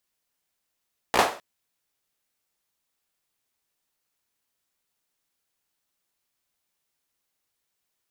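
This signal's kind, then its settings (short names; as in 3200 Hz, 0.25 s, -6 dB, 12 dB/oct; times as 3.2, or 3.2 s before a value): hand clap length 0.26 s, apart 16 ms, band 680 Hz, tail 0.38 s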